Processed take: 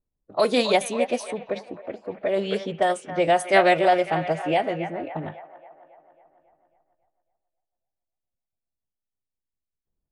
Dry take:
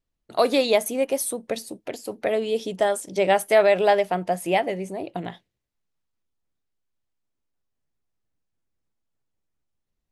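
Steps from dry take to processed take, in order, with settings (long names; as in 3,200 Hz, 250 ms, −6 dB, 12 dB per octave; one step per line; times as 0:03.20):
delay with a band-pass on its return 274 ms, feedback 60%, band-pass 1,500 Hz, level −8.5 dB
low-pass that shuts in the quiet parts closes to 780 Hz, open at −16.5 dBFS
phase-vocoder pitch shift with formants kept −2 semitones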